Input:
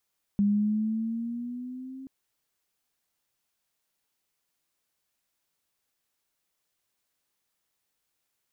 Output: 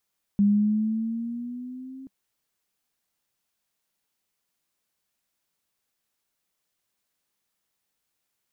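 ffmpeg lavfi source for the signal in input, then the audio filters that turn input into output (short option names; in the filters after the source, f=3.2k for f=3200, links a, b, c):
-f lavfi -i "aevalsrc='pow(10,(-19.5-19.5*t/1.68)/20)*sin(2*PI*201*1.68/(5*log(2)/12)*(exp(5*log(2)/12*t/1.68)-1))':d=1.68:s=44100"
-af "equalizer=f=200:t=o:w=0.35:g=4"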